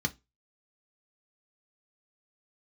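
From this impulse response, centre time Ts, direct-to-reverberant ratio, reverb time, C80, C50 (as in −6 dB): 4 ms, 4.5 dB, 0.20 s, 32.5 dB, 23.0 dB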